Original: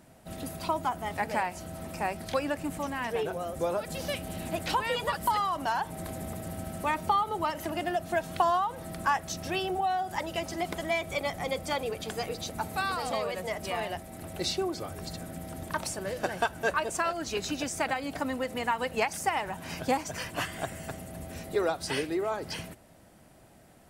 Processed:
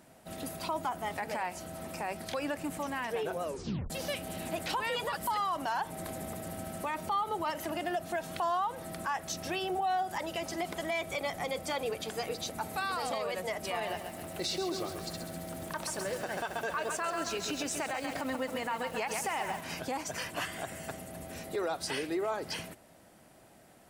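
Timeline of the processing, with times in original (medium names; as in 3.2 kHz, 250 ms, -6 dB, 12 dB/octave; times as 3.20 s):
3.43 s: tape stop 0.47 s
13.74–19.61 s: bit-crushed delay 134 ms, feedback 55%, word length 8-bit, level -8 dB
whole clip: peak limiter -24 dBFS; bass shelf 140 Hz -10 dB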